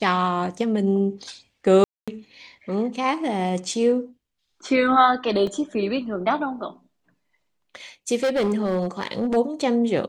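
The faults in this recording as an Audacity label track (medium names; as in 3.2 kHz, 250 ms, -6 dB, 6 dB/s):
1.840000	2.080000	dropout 236 ms
5.470000	5.470000	dropout 2.6 ms
8.230000	9.370000	clipped -18 dBFS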